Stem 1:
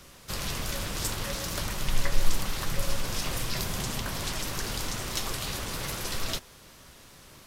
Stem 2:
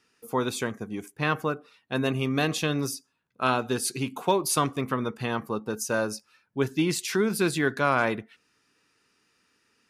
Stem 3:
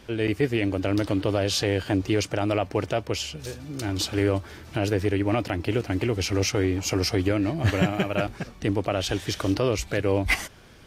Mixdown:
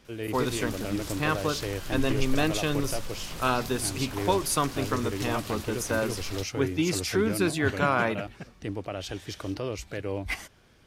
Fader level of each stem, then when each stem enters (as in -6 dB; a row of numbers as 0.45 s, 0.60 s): -7.5 dB, -1.5 dB, -9.0 dB; 0.05 s, 0.00 s, 0.00 s